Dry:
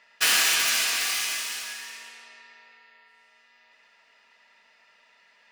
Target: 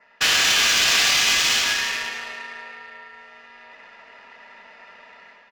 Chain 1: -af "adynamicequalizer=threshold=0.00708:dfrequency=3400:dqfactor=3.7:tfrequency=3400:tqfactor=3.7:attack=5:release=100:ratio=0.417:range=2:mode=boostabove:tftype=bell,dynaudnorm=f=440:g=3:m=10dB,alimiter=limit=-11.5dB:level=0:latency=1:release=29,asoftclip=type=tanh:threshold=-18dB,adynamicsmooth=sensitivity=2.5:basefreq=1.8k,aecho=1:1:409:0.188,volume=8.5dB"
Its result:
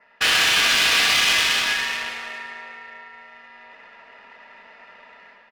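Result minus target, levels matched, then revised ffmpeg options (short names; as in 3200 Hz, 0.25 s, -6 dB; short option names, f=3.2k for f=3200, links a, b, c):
echo 0.123 s late; 8000 Hz band -4.0 dB
-af "adynamicequalizer=threshold=0.00708:dfrequency=3400:dqfactor=3.7:tfrequency=3400:tqfactor=3.7:attack=5:release=100:ratio=0.417:range=2:mode=boostabove:tftype=bell,lowpass=f=7k:t=q:w=2.3,dynaudnorm=f=440:g=3:m=10dB,alimiter=limit=-11.5dB:level=0:latency=1:release=29,asoftclip=type=tanh:threshold=-18dB,adynamicsmooth=sensitivity=2.5:basefreq=1.8k,aecho=1:1:286:0.188,volume=8.5dB"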